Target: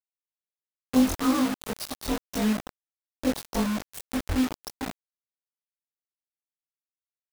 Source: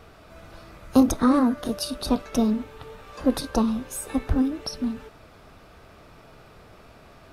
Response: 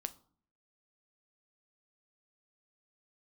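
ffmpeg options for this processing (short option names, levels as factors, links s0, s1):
-filter_complex "[0:a]afftfilt=real='re':imag='-im':win_size=2048:overlap=0.75,asplit=2[s0][s1];[s1]adelay=1691,volume=0.112,highshelf=f=4000:g=-38[s2];[s0][s2]amix=inputs=2:normalize=0,acrusher=bits=4:mix=0:aa=0.000001,volume=0.891"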